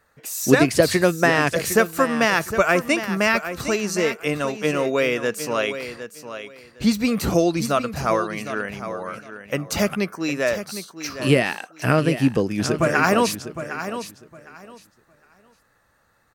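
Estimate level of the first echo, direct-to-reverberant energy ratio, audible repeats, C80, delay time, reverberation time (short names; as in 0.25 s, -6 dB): -11.0 dB, none, 2, none, 0.759 s, none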